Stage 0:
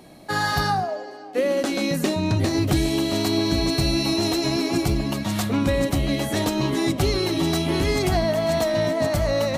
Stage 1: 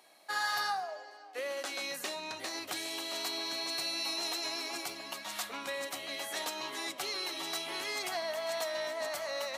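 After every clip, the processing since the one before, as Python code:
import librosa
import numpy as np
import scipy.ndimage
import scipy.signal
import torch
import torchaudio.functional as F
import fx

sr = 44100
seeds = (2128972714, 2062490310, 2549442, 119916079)

y = scipy.signal.sosfilt(scipy.signal.butter(2, 880.0, 'highpass', fs=sr, output='sos'), x)
y = y * 10.0 ** (-7.5 / 20.0)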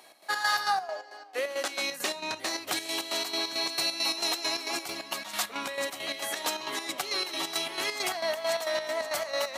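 y = fx.chopper(x, sr, hz=4.5, depth_pct=60, duty_pct=55)
y = y * 10.0 ** (7.5 / 20.0)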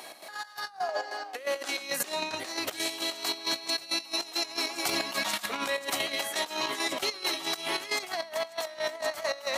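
y = fx.over_compress(x, sr, threshold_db=-37.0, ratio=-0.5)
y = y * 10.0 ** (4.5 / 20.0)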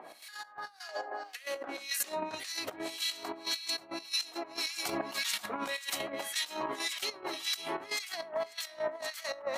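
y = fx.harmonic_tremolo(x, sr, hz=1.8, depth_pct=100, crossover_hz=1600.0)
y = y + 10.0 ** (-23.5 / 20.0) * np.pad(y, (int(547 * sr / 1000.0), 0))[:len(y)]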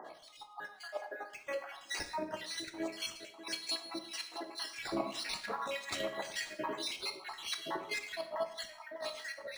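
y = fx.spec_dropout(x, sr, seeds[0], share_pct=56)
y = fx.rev_plate(y, sr, seeds[1], rt60_s=0.7, hf_ratio=0.8, predelay_ms=0, drr_db=6.0)
y = np.interp(np.arange(len(y)), np.arange(len(y))[::3], y[::3])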